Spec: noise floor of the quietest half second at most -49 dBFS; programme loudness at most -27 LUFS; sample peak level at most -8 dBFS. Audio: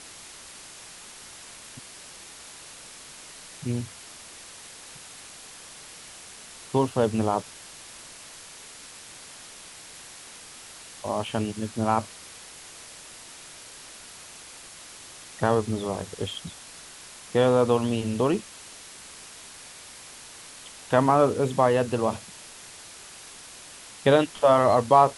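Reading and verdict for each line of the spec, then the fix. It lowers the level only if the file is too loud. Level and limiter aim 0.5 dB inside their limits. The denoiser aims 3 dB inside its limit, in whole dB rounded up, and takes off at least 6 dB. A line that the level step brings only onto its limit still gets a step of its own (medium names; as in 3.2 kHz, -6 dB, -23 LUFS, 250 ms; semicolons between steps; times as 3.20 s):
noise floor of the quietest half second -45 dBFS: fail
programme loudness -24.5 LUFS: fail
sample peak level -5.5 dBFS: fail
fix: noise reduction 6 dB, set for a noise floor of -45 dBFS; trim -3 dB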